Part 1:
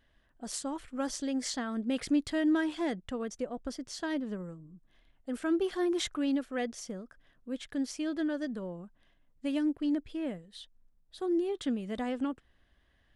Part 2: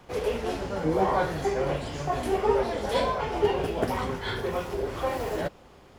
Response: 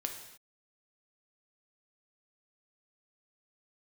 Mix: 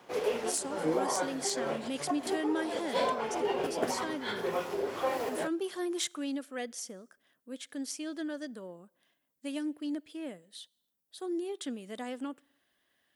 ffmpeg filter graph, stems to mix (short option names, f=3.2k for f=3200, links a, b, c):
-filter_complex "[0:a]aemphasis=mode=production:type=50fm,aeval=exprs='clip(val(0),-1,0.1)':c=same,volume=-4dB,asplit=3[a][b][c];[b]volume=-21.5dB[d];[1:a]volume=-2dB[e];[c]apad=whole_len=264095[f];[e][f]sidechaincompress=threshold=-40dB:ratio=8:attack=16:release=137[g];[2:a]atrim=start_sample=2205[h];[d][h]afir=irnorm=-1:irlink=0[i];[a][g][i]amix=inputs=3:normalize=0,highpass=250"